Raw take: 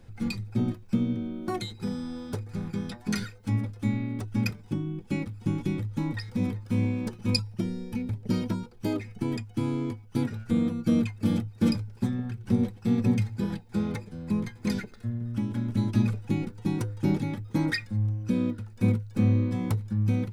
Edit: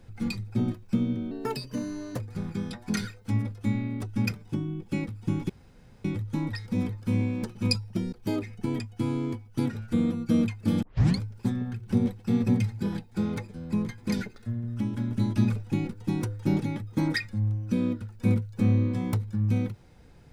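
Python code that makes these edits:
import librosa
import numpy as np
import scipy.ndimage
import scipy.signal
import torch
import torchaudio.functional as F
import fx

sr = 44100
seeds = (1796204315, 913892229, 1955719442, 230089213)

y = fx.edit(x, sr, fx.speed_span(start_s=1.31, length_s=1.07, speed=1.21),
    fx.insert_room_tone(at_s=5.68, length_s=0.55),
    fx.cut(start_s=7.76, length_s=0.94),
    fx.tape_start(start_s=11.4, length_s=0.37), tone=tone)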